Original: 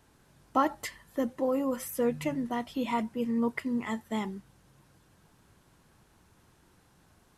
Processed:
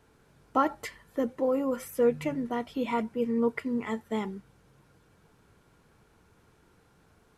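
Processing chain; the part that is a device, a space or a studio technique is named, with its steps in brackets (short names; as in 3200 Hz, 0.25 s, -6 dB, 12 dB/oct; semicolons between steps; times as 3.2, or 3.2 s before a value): inside a helmet (high shelf 4400 Hz -5.5 dB; small resonant body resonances 450/1400/2300 Hz, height 8 dB)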